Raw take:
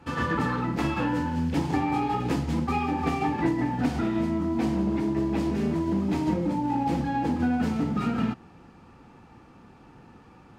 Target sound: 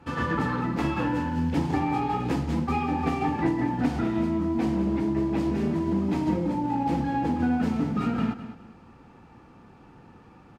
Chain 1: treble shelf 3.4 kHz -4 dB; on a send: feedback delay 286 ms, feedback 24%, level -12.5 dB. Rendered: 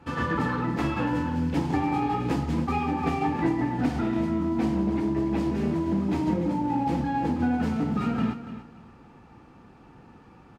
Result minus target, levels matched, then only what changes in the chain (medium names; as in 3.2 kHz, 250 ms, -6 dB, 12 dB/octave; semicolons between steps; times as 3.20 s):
echo 80 ms late
change: feedback delay 206 ms, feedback 24%, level -12.5 dB